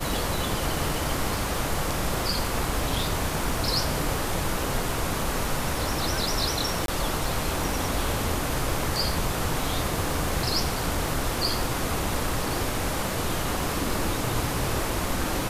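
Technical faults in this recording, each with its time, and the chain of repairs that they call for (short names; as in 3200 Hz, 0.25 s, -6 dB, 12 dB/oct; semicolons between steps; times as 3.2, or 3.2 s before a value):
crackle 55/s -34 dBFS
6.86–6.88 gap 22 ms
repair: de-click; interpolate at 6.86, 22 ms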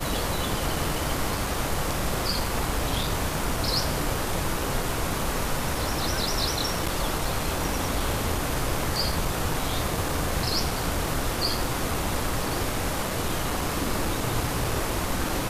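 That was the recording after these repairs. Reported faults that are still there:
none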